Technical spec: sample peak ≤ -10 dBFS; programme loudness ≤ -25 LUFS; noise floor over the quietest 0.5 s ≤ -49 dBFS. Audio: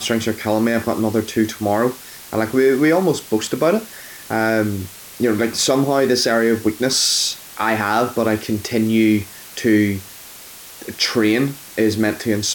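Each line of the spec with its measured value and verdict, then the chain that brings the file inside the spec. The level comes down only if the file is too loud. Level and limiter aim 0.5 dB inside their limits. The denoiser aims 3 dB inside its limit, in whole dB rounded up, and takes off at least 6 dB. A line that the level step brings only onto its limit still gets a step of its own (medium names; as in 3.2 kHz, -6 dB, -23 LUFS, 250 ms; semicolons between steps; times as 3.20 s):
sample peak -5.0 dBFS: fail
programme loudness -18.5 LUFS: fail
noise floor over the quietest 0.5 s -38 dBFS: fail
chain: noise reduction 7 dB, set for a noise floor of -38 dBFS; trim -7 dB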